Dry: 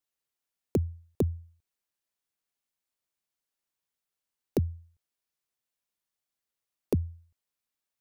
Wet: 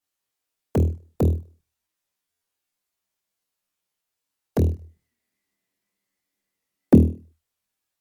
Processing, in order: 4.74–6.98 s: small resonant body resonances 230/2000 Hz, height 17 dB -> 13 dB, ringing for 25 ms; on a send: flutter echo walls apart 4.3 m, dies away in 0.38 s; on the sum: touch-sensitive flanger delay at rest 10.6 ms, full sweep at -21 dBFS; buffer glitch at 2.31 s; trim +6.5 dB; MP3 80 kbps 44.1 kHz

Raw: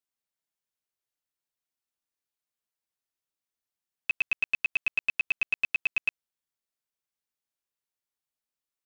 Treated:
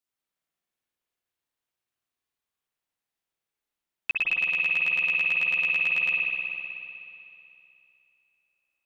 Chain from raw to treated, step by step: spring tank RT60 2.8 s, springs 52 ms, chirp 45 ms, DRR -4.5 dB

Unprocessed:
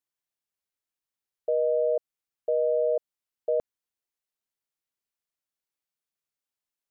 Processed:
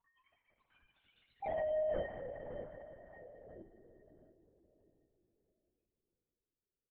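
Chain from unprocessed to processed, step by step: spectral selection erased 1.93–4.20 s, 370–880 Hz; hum notches 60/120/180/240/300/360/420/480 Hz; dynamic bell 340 Hz, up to -3 dB, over -44 dBFS, Q 1.5; in parallel at -1.5 dB: peak limiter -29 dBFS, peak gain reduction 9 dB; on the sum: harmony voices -5 st -10 dB, +3 st -16 dB, +4 st -1 dB; overload inside the chain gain 24.5 dB; loudest bins only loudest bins 1; saturation -34 dBFS, distortion -17 dB; filtered feedback delay 636 ms, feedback 38%, low-pass 820 Hz, level -11 dB; on a send at -1 dB: reverberation RT60 3.9 s, pre-delay 12 ms; on the sum: LPC vocoder at 8 kHz whisper; swell ahead of each attack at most 27 dB/s

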